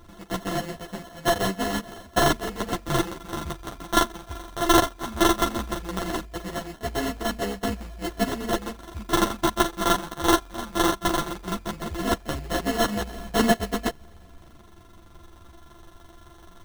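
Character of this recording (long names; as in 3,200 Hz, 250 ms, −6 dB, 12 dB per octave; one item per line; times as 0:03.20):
a buzz of ramps at a fixed pitch in blocks of 64 samples
phaser sweep stages 2, 0.17 Hz, lowest notch 370–1,700 Hz
aliases and images of a low sample rate 2,400 Hz, jitter 0%
a shimmering, thickened sound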